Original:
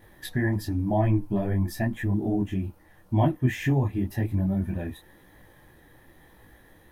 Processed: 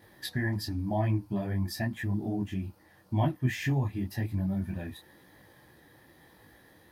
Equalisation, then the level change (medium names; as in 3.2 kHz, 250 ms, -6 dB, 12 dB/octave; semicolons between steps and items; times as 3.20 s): high-pass 91 Hz; peaking EQ 4.7 kHz +9 dB 0.43 oct; dynamic bell 410 Hz, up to -6 dB, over -39 dBFS, Q 0.73; -2.0 dB